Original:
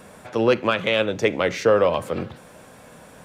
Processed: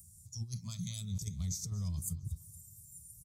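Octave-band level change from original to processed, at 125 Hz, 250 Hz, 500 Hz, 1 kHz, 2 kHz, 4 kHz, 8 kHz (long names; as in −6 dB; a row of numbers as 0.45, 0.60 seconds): −3.0 dB, −18.0 dB, below −40 dB, below −35 dB, below −35 dB, −19.0 dB, +1.5 dB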